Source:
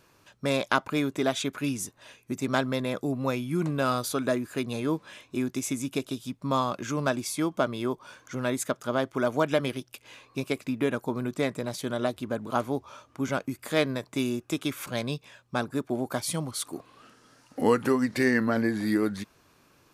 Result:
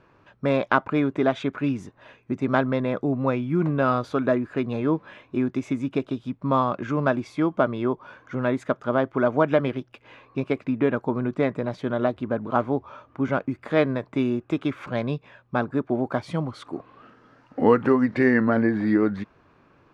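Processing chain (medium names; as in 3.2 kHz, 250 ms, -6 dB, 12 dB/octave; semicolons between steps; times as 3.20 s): low-pass 1.9 kHz 12 dB/octave; trim +5 dB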